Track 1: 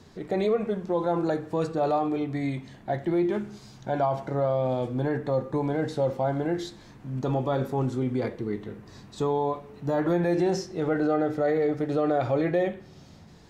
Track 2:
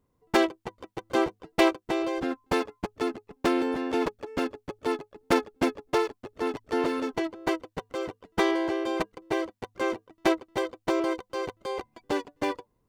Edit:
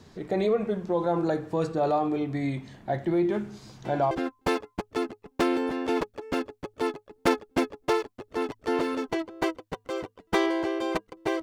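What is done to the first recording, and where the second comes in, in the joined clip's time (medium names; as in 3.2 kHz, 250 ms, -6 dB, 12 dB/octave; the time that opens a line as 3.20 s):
track 1
3.66 s: add track 2 from 1.71 s 0.45 s -13.5 dB
4.11 s: go over to track 2 from 2.16 s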